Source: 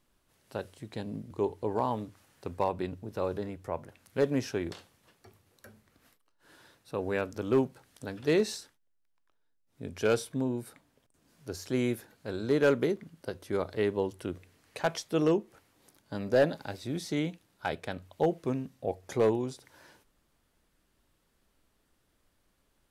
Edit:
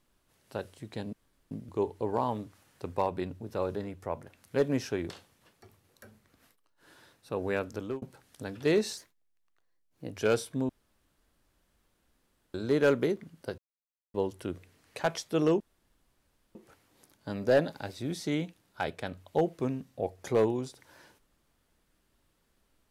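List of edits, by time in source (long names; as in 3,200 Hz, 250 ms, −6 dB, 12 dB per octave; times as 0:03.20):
0:01.13: splice in room tone 0.38 s
0:07.35–0:07.64: fade out
0:08.59–0:09.96: play speed 115%
0:10.49–0:12.34: fill with room tone
0:13.38–0:13.94: silence
0:15.40: splice in room tone 0.95 s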